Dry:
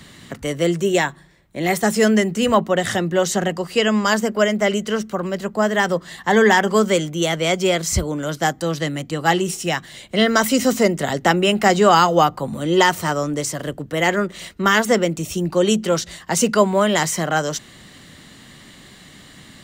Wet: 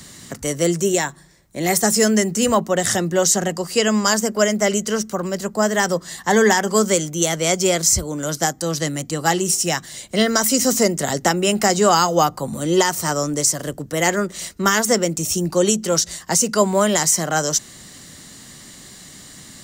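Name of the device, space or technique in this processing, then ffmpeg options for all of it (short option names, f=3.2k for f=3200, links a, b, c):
over-bright horn tweeter: -af "highshelf=f=4.3k:t=q:w=1.5:g=8.5,alimiter=limit=-4.5dB:level=0:latency=1:release=323"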